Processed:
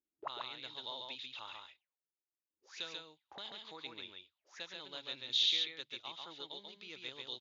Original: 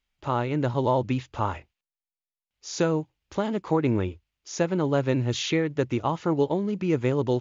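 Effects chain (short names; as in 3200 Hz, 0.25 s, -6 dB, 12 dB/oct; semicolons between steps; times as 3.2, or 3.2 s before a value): auto-wah 320–3700 Hz, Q 8.6, up, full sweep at -30 dBFS; echo 0.139 s -3.5 dB; gain +6.5 dB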